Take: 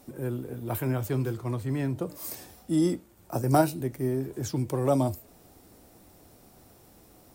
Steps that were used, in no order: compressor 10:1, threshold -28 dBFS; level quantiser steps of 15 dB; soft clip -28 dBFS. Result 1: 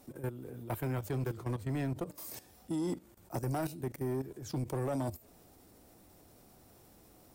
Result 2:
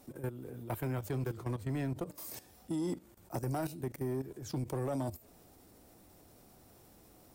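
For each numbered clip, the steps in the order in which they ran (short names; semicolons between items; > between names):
level quantiser > soft clip > compressor; level quantiser > compressor > soft clip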